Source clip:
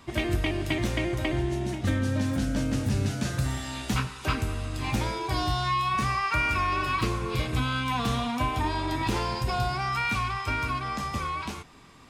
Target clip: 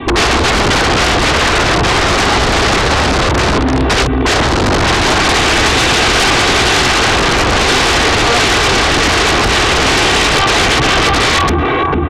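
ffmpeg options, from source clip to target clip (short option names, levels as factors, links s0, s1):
-filter_complex "[0:a]adynamicequalizer=threshold=0.00891:dfrequency=1300:dqfactor=4.7:tfrequency=1300:tqfactor=4.7:attack=5:release=100:ratio=0.375:range=1.5:mode=cutabove:tftype=bell,afwtdn=0.0282,aresample=8000,aeval=exprs='(mod(29.9*val(0)+1,2)-1)/29.9':c=same,aresample=44100,highpass=43,aemphasis=mode=reproduction:type=riaa,aecho=1:1:2.6:0.68,asplit=2[s0][s1];[s1]adelay=448,lowpass=f=1700:p=1,volume=0.316,asplit=2[s2][s3];[s3]adelay=448,lowpass=f=1700:p=1,volume=0.21,asplit=2[s4][s5];[s5]adelay=448,lowpass=f=1700:p=1,volume=0.21[s6];[s0][s2][s4][s6]amix=inputs=4:normalize=0,acrossover=split=180[s7][s8];[s8]aeval=exprs='0.119*sin(PI/2*6.31*val(0)/0.119)':c=same[s9];[s7][s9]amix=inputs=2:normalize=0,acompressor=threshold=0.0447:ratio=6,alimiter=level_in=31.6:limit=0.891:release=50:level=0:latency=1,volume=0.531"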